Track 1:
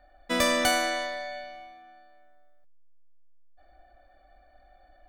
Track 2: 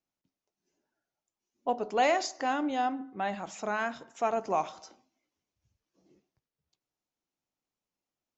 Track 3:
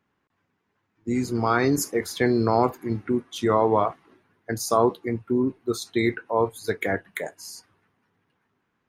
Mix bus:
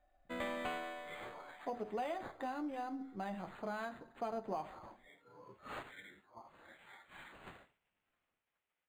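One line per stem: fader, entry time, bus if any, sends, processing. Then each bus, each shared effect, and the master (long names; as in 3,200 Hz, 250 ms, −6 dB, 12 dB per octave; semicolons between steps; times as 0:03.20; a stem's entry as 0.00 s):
−17.0 dB, 0.00 s, no bus, no send, no processing
−3.0 dB, 0.00 s, bus A, no send, low-shelf EQ 170 Hz +9.5 dB
−2.0 dB, 0.00 s, bus A, no send, random phases in long frames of 200 ms; gate on every frequency bin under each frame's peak −15 dB weak; high-pass filter 860 Hz 6 dB per octave; automatic ducking −16 dB, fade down 0.40 s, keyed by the second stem
bus A: 0.0 dB, flanger 0.43 Hz, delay 8.6 ms, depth 2.9 ms, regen −45%; downward compressor 4 to 1, threshold −37 dBFS, peak gain reduction 9 dB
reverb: not used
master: speech leveller within 4 dB 2 s; linearly interpolated sample-rate reduction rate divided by 8×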